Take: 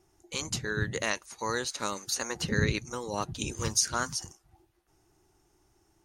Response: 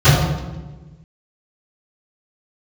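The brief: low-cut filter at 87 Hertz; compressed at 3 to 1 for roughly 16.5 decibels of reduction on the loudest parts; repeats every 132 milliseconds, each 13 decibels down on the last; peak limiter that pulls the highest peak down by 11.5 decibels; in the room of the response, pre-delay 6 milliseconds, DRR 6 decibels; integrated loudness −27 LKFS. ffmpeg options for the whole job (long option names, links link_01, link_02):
-filter_complex "[0:a]highpass=87,acompressor=threshold=-45dB:ratio=3,alimiter=level_in=13dB:limit=-24dB:level=0:latency=1,volume=-13dB,aecho=1:1:132|264|396:0.224|0.0493|0.0108,asplit=2[link_01][link_02];[1:a]atrim=start_sample=2205,adelay=6[link_03];[link_02][link_03]afir=irnorm=-1:irlink=0,volume=-33.5dB[link_04];[link_01][link_04]amix=inputs=2:normalize=0,volume=16dB"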